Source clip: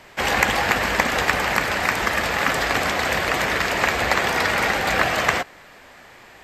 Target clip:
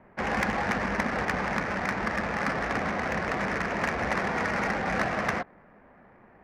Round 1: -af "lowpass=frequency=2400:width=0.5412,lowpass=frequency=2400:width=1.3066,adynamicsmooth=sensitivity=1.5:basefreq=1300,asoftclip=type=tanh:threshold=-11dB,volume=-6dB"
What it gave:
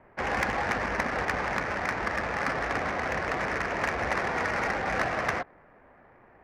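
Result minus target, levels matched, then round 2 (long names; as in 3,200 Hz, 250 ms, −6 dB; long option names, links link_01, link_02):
250 Hz band −4.5 dB
-af "lowpass=frequency=2400:width=0.5412,lowpass=frequency=2400:width=1.3066,equalizer=frequency=200:width_type=o:width=0.57:gain=9,adynamicsmooth=sensitivity=1.5:basefreq=1300,asoftclip=type=tanh:threshold=-11dB,volume=-6dB"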